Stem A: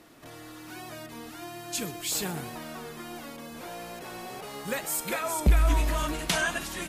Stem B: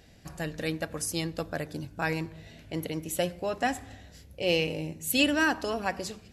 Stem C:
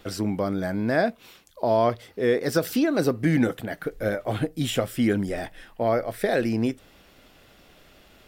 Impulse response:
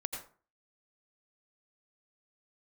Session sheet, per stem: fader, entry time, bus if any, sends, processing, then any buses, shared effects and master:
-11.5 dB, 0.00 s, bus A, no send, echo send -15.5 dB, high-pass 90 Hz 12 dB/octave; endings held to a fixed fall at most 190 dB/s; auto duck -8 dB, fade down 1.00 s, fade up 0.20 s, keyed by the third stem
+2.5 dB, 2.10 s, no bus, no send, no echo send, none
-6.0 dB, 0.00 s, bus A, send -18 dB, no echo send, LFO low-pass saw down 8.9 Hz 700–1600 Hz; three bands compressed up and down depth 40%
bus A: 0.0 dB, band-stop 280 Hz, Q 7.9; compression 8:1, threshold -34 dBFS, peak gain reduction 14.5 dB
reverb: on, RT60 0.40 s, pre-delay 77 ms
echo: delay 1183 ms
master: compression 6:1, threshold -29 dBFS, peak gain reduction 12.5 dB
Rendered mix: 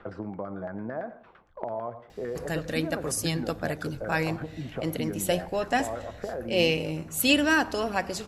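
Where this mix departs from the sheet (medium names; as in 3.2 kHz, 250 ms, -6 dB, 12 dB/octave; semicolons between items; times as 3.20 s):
stem A: muted; master: missing compression 6:1, threshold -29 dBFS, peak gain reduction 12.5 dB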